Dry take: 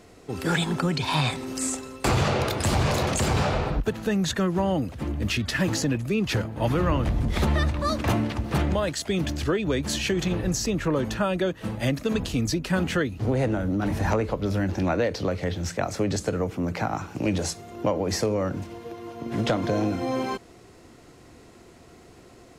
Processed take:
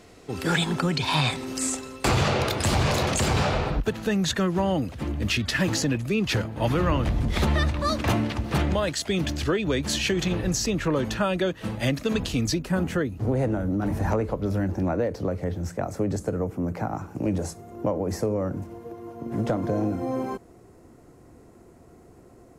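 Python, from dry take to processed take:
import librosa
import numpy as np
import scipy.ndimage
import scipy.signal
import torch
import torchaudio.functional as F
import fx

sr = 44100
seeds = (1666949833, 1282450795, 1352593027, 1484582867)

y = fx.peak_eq(x, sr, hz=3500.0, db=fx.steps((0.0, 2.5), (12.62, -9.0), (14.68, -15.0)), octaves=2.1)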